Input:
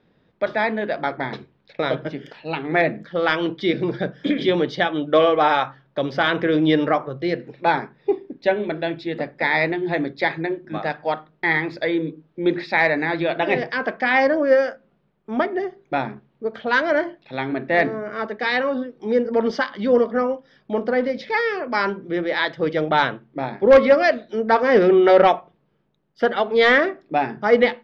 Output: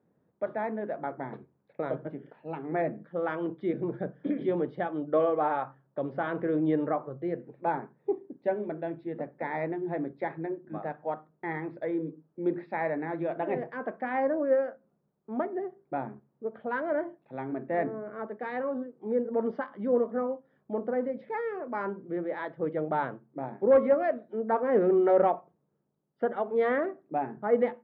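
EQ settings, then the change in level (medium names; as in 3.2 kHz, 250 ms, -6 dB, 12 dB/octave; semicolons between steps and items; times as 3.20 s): high-pass 96 Hz 12 dB/octave; low-pass 1.1 kHz 12 dB/octave; distance through air 72 m; -8.5 dB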